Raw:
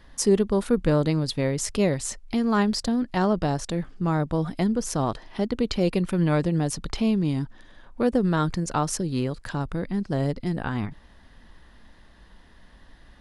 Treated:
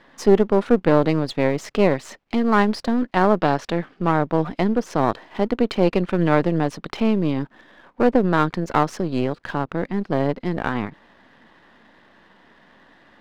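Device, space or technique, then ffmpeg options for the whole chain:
crystal radio: -filter_complex "[0:a]highpass=230,lowpass=2.8k,aeval=exprs='if(lt(val(0),0),0.447*val(0),val(0))':c=same,asettb=1/sr,asplit=3[a][b][c];[a]atrim=end=3.394[d];[b]atrim=start=3.39:end=4.11,asetpts=PTS-STARTPTS,afade=t=in:d=0.004:c=qsin,afade=t=out:st=0.716:d=0.004:c=qsin,equalizer=f=2.8k:w=0.52:g=4[e];[c]atrim=start=4.106[f];[d][e]acrossfade=d=0.004:c1=hsin:c2=qsin[g];[g][f]acrossfade=d=0.004:c1=qsin:c2=hsin,volume=8.5dB"

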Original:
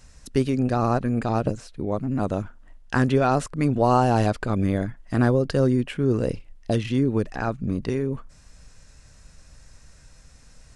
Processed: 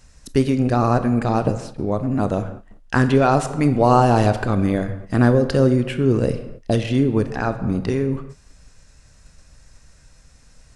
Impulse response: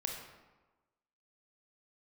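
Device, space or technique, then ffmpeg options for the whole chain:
keyed gated reverb: -filter_complex "[0:a]asplit=3[a][b][c];[1:a]atrim=start_sample=2205[d];[b][d]afir=irnorm=-1:irlink=0[e];[c]apad=whole_len=474436[f];[e][f]sidechaingate=range=-33dB:threshold=-42dB:ratio=16:detection=peak,volume=-3.5dB[g];[a][g]amix=inputs=2:normalize=0"

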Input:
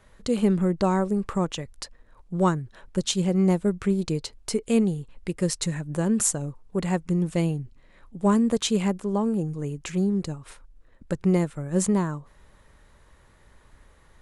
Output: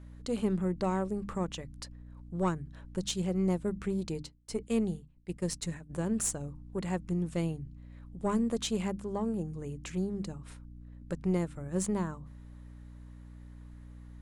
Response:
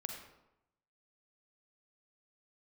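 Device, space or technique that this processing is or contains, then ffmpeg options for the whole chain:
valve amplifier with mains hum: -filter_complex "[0:a]bandreject=f=50:t=h:w=6,bandreject=f=100:t=h:w=6,bandreject=f=150:t=h:w=6,bandreject=f=200:t=h:w=6,bandreject=f=250:t=h:w=6,bandreject=f=300:t=h:w=6,aeval=exprs='(tanh(3.98*val(0)+0.3)-tanh(0.3))/3.98':c=same,aeval=exprs='val(0)+0.01*(sin(2*PI*60*n/s)+sin(2*PI*2*60*n/s)/2+sin(2*PI*3*60*n/s)/3+sin(2*PI*4*60*n/s)/4+sin(2*PI*5*60*n/s)/5)':c=same,asplit=3[a][b][c];[a]afade=t=out:st=4.21:d=0.02[d];[b]agate=range=-33dB:threshold=-27dB:ratio=3:detection=peak,afade=t=in:st=4.21:d=0.02,afade=t=out:st=5.89:d=0.02[e];[c]afade=t=in:st=5.89:d=0.02[f];[d][e][f]amix=inputs=3:normalize=0,volume=-7dB"

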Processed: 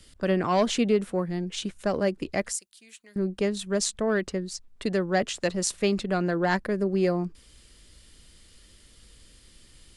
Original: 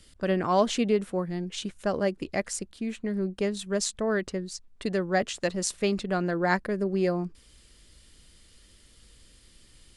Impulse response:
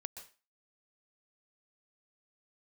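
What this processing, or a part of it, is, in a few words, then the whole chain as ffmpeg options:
one-band saturation: -filter_complex "[0:a]asettb=1/sr,asplit=3[a][b][c];[a]atrim=end=2.524[d];[b]atrim=start=2.52:end=3.16,asetpts=PTS-STARTPTS,afade=t=in:d=0.004:c=qsin,afade=t=out:st=0.636:d=0.004:c=qsin,aderivative[e];[c]atrim=start=3.156[f];[d][e]acrossfade=d=0.004:c1=hsin:c2=qsin[g];[g][f]acrossfade=d=0.004:c1=qsin:c2=hsin,acrossover=split=380|2500[h][i][j];[i]asoftclip=type=tanh:threshold=-20dB[k];[h][k][j]amix=inputs=3:normalize=0,volume=2dB"

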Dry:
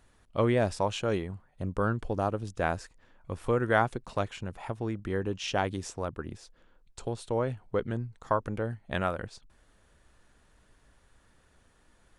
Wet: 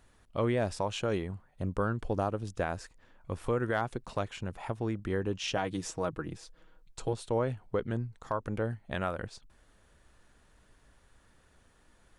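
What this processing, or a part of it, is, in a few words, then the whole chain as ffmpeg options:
clipper into limiter: -filter_complex "[0:a]asoftclip=type=hard:threshold=-12.5dB,alimiter=limit=-19.5dB:level=0:latency=1:release=191,asettb=1/sr,asplit=3[a][b][c];[a]atrim=end=5.564[d];[b]atrim=start=5.56:end=7.13,asetpts=PTS-STARTPTS,afade=t=in:d=0.004:c=qsin,afade=t=out:st=1.566:d=0.004:c=qsin,aecho=1:1:6.3:0.62,atrim=end_sample=69237[e];[c]atrim=start=7.126[f];[d][e]acrossfade=d=0.004:c1=hsin:c2=qsin[g];[g][f]acrossfade=d=0.004:c1=qsin:c2=hsin"

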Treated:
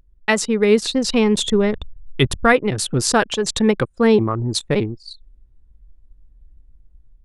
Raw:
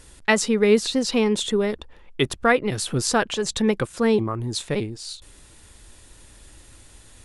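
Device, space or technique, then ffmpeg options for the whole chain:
voice memo with heavy noise removal: -filter_complex "[0:a]asplit=3[a][b][c];[a]afade=t=out:st=0.92:d=0.02[d];[b]asubboost=boost=3.5:cutoff=190,afade=t=in:st=0.92:d=0.02,afade=t=out:st=2.52:d=0.02[e];[c]afade=t=in:st=2.52:d=0.02[f];[d][e][f]amix=inputs=3:normalize=0,anlmdn=39.8,dynaudnorm=f=420:g=3:m=5.5dB,volume=1dB"

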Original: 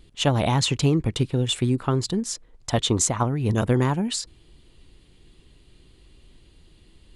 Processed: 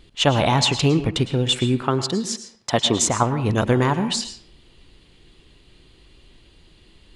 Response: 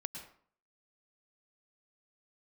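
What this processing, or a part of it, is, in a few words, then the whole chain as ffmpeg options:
filtered reverb send: -filter_complex "[0:a]asplit=2[a][b];[b]highpass=f=530:p=1,lowpass=7k[c];[1:a]atrim=start_sample=2205[d];[c][d]afir=irnorm=-1:irlink=0,volume=2.5dB[e];[a][e]amix=inputs=2:normalize=0,asettb=1/sr,asplit=3[f][g][h];[f]atrim=end=1.824[i];[g]atrim=start=1.82:end=3.08,asetpts=PTS-STARTPTS,afade=t=in:d=0.004:c=qsin,afade=t=out:st=1.256:d=0.004:c=qsin,highpass=130[j];[h]atrim=start=3.076[k];[i][j]acrossfade=d=0.004:c1=hsin:c2=qsin[l];[l][k]acrossfade=d=0.004:c1=qsin:c2=hsin"

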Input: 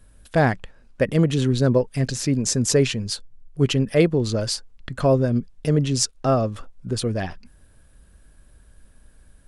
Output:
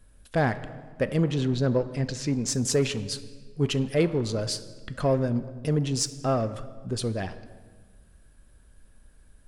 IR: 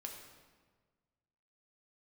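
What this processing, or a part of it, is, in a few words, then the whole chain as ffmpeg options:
saturated reverb return: -filter_complex "[0:a]asettb=1/sr,asplit=3[a][b][c];[a]atrim=end=1.204[d];[b]atrim=start=1.2:end=2.48,asetpts=PTS-STARTPTS,afade=t=in:d=0.004:c=qsin,afade=t=out:st=1.276:d=0.004:c=qsin,lowpass=6.1k[e];[c]atrim=start=2.476[f];[d][e]acrossfade=d=0.004:c1=hsin:c2=qsin[g];[g][f]acrossfade=d=0.004:c1=qsin:c2=hsin,asplit=2[h][i];[1:a]atrim=start_sample=2205[j];[i][j]afir=irnorm=-1:irlink=0,asoftclip=type=tanh:threshold=-22.5dB,volume=-1.5dB[k];[h][k]amix=inputs=2:normalize=0,volume=-7.5dB"

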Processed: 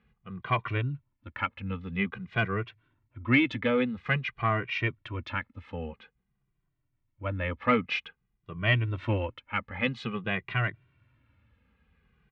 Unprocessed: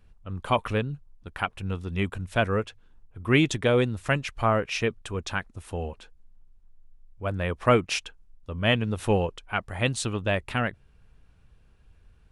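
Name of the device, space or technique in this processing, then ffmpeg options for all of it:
barber-pole flanger into a guitar amplifier: -filter_complex "[0:a]asplit=2[a][b];[b]adelay=2,afreqshift=-0.5[c];[a][c]amix=inputs=2:normalize=1,asoftclip=type=tanh:threshold=-15.5dB,highpass=91,equalizer=f=120:t=q:w=4:g=5,equalizer=f=250:t=q:w=4:g=3,equalizer=f=430:t=q:w=4:g=-4,equalizer=f=710:t=q:w=4:g=-6,equalizer=f=1.2k:t=q:w=4:g=3,equalizer=f=2.1k:t=q:w=4:g=8,lowpass=f=3.5k:w=0.5412,lowpass=f=3.5k:w=1.3066"

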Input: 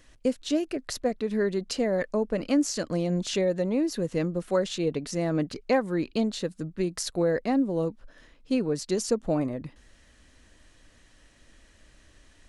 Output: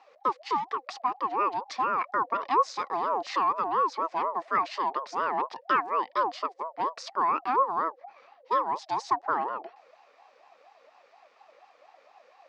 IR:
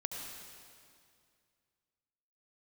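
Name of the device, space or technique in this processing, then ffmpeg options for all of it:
voice changer toy: -af "aeval=exprs='val(0)*sin(2*PI*660*n/s+660*0.25/4.2*sin(2*PI*4.2*n/s))':c=same,highpass=460,equalizer=f=740:t=q:w=4:g=3,equalizer=f=1.1k:t=q:w=4:g=6,equalizer=f=1.8k:t=q:w=4:g=6,equalizer=f=3.4k:t=q:w=4:g=-5,lowpass=f=4.9k:w=0.5412,lowpass=f=4.9k:w=1.3066"

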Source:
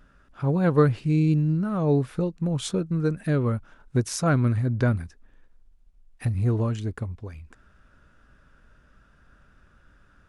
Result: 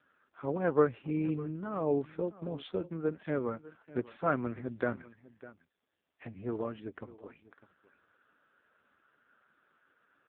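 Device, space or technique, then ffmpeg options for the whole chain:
satellite phone: -af "highpass=330,lowpass=3.3k,aecho=1:1:602:0.126,volume=-3dB" -ar 8000 -c:a libopencore_amrnb -b:a 5150

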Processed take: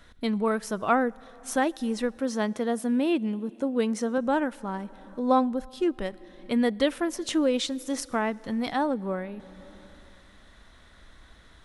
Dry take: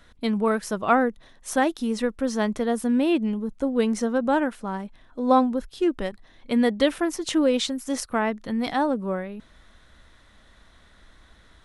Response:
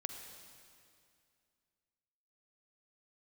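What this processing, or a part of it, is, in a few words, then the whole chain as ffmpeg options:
ducked reverb: -filter_complex "[0:a]asettb=1/sr,asplit=3[a][b][c];[a]atrim=end=2.174[d];[b]atrim=start=2.17:end=4.18,asetpts=PTS-STARTPTS,afade=t=in:d=0.004:c=qsin,afade=t=out:st=2.006:d=0.004:c=qsin,highpass=130[e];[c]atrim=start=4.176[f];[d][e]acrossfade=d=0.004:c1=hsin:c2=qsin[g];[g][f]acrossfade=d=0.004:c1=qsin:c2=hsin,asplit=3[h][i][j];[1:a]atrim=start_sample=2205[k];[i][k]afir=irnorm=-1:irlink=0[l];[j]apad=whole_len=513761[m];[l][m]sidechaincompress=threshold=-36dB:ratio=6:attack=48:release=598,volume=-1.5dB[n];[h][n]amix=inputs=2:normalize=0,volume=-4dB"

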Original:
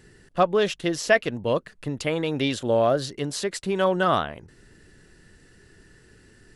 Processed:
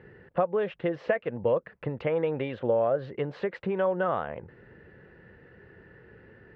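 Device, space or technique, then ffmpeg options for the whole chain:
bass amplifier: -af "acompressor=threshold=-29dB:ratio=5,highpass=74,equalizer=f=280:t=q:w=4:g=-5,equalizer=f=510:t=q:w=4:g=9,equalizer=f=850:t=q:w=4:g=4,lowpass=f=2.3k:w=0.5412,lowpass=f=2.3k:w=1.3066,volume=2dB"

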